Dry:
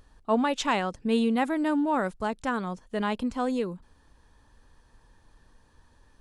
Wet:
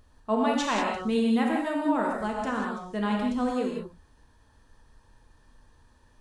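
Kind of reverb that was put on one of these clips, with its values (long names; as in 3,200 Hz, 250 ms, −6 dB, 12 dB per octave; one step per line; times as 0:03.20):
reverb whose tail is shaped and stops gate 220 ms flat, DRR −1 dB
level −3.5 dB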